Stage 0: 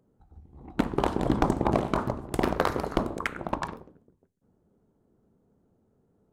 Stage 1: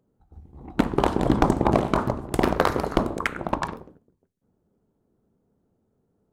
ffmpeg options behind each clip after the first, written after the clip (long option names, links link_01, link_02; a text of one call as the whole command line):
ffmpeg -i in.wav -af "agate=range=-7dB:threshold=-54dB:ratio=16:detection=peak,volume=4.5dB" out.wav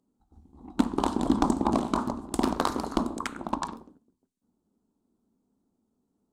ffmpeg -i in.wav -af "equalizer=frequency=125:width_type=o:width=1:gain=-9,equalizer=frequency=250:width_type=o:width=1:gain=11,equalizer=frequency=500:width_type=o:width=1:gain=-6,equalizer=frequency=1000:width_type=o:width=1:gain=7,equalizer=frequency=2000:width_type=o:width=1:gain=-7,equalizer=frequency=4000:width_type=o:width=1:gain=6,equalizer=frequency=8000:width_type=o:width=1:gain=10,volume=-8dB" out.wav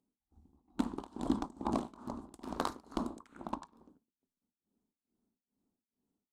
ffmpeg -i in.wav -af "tremolo=f=2.3:d=0.94,volume=-7.5dB" out.wav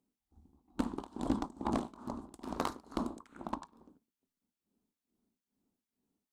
ffmpeg -i in.wav -af "aeval=exprs='clip(val(0),-1,0.0398)':channel_layout=same,volume=1dB" out.wav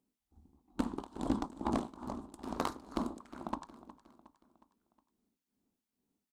ffmpeg -i in.wav -af "aecho=1:1:363|726|1089|1452:0.141|0.0706|0.0353|0.0177" out.wav